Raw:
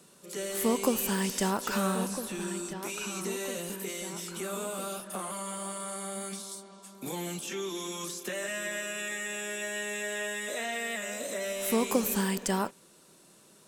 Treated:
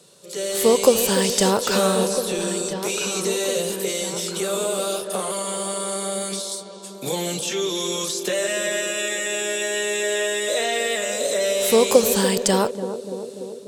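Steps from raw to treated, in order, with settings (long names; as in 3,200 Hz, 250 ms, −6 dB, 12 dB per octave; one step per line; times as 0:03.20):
automatic gain control gain up to 6 dB
octave-band graphic EQ 125/250/500/4,000/8,000 Hz +8/−5/+11/+10/+5 dB
feedback echo with a band-pass in the loop 292 ms, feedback 80%, band-pass 350 Hz, level −9.5 dB
level −1 dB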